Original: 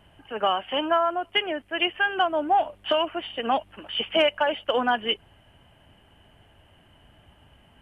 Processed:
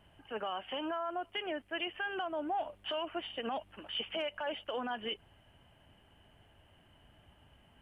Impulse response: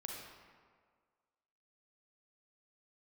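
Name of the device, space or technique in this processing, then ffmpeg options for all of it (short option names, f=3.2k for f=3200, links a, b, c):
stacked limiters: -af "alimiter=limit=-16.5dB:level=0:latency=1:release=20,alimiter=limit=-21dB:level=0:latency=1:release=81,volume=-7dB"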